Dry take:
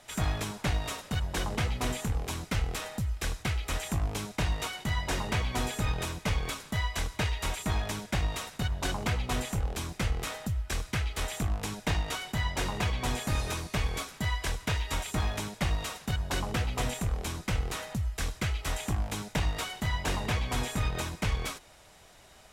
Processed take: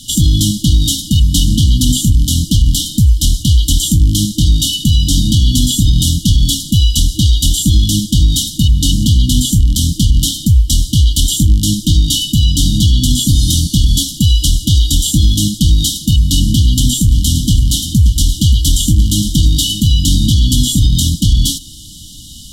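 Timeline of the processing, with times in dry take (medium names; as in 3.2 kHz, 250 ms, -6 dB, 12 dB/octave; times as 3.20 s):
16.52–19.87 s: delay 578 ms -12.5 dB
whole clip: FFT band-reject 320–2900 Hz; loudness maximiser +26 dB; trim -1 dB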